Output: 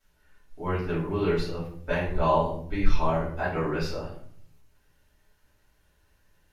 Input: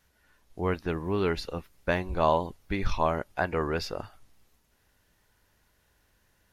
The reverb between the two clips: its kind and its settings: simulated room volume 86 m³, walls mixed, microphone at 2.8 m; trim -12 dB

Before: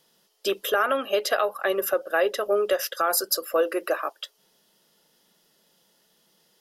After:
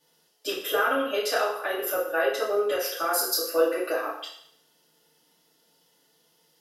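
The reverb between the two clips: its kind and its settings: FDN reverb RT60 0.66 s, low-frequency decay 0.8×, high-frequency decay 0.95×, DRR -9 dB; trim -10 dB

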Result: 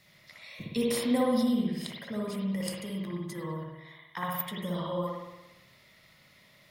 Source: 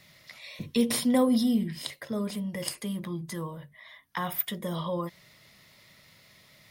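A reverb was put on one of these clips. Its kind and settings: spring tank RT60 1 s, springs 57 ms, chirp 50 ms, DRR -2.5 dB; trim -5.5 dB

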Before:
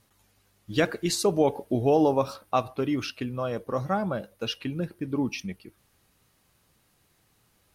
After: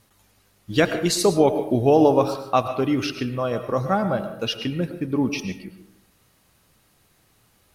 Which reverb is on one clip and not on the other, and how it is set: algorithmic reverb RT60 0.7 s, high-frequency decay 0.5×, pre-delay 70 ms, DRR 9 dB; trim +5 dB

